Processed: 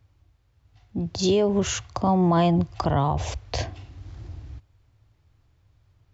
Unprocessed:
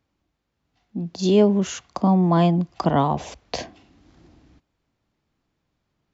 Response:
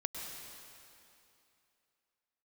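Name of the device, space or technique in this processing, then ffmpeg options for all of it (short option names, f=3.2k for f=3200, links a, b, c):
car stereo with a boomy subwoofer: -af "lowshelf=f=140:t=q:w=3:g=10.5,alimiter=limit=-17dB:level=0:latency=1:release=148,volume=4.5dB"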